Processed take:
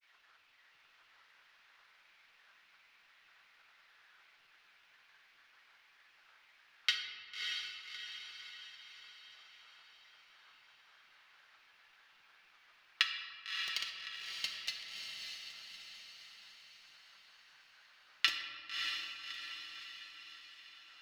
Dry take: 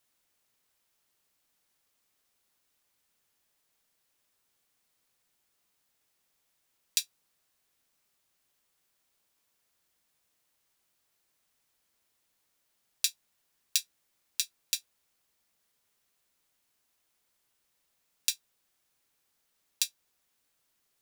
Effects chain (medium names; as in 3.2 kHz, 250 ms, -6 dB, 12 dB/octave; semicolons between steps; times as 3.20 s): high-pass 1.4 kHz 12 dB/octave; peaking EQ 1.9 kHz +9.5 dB 0.23 oct; in parallel at -3 dB: upward compressor, threshold -40 dBFS; on the sum: granulator, pitch spread up and down by 7 st; distance through air 320 m; echo that smears into a reverb 610 ms, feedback 53%, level -3.5 dB; on a send at -4 dB: reverberation RT60 2.0 s, pre-delay 3 ms; on the sum: trim +2.5 dB